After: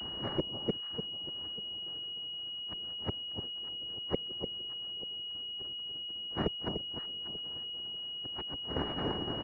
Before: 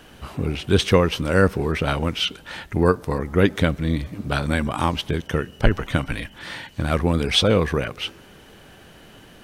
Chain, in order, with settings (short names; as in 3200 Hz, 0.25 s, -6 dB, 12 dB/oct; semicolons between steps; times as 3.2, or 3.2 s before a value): in parallel at -2 dB: compressor 5:1, threshold -32 dBFS, peak gain reduction 19 dB; on the sum: feedback echo 0.51 s, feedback 53%, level -5 dB; flipped gate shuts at -14 dBFS, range -37 dB; noise vocoder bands 3; frequency shift -42 Hz; formant shift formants +4 st; air absorption 140 m; echo with dull and thin repeats by turns 0.296 s, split 1000 Hz, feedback 51%, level -6.5 dB; pulse-width modulation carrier 2900 Hz; gain -2 dB